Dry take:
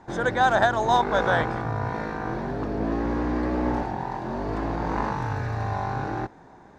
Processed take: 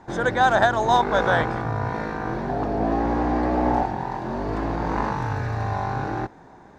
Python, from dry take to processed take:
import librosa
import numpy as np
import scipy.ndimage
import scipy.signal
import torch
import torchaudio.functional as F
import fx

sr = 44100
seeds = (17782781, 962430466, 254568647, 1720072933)

y = fx.peak_eq(x, sr, hz=750.0, db=10.0, octaves=0.42, at=(2.49, 3.86))
y = y * 10.0 ** (2.0 / 20.0)